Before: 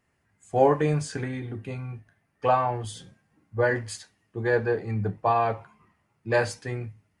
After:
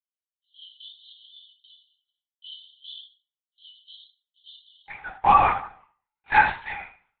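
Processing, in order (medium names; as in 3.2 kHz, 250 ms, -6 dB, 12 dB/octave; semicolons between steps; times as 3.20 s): gate with hold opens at -49 dBFS; waveshaping leveller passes 1; brick-wall FIR high-pass 2.9 kHz, from 4.88 s 710 Hz; reverberation RT60 0.50 s, pre-delay 3 ms, DRR -2 dB; LPC vocoder at 8 kHz whisper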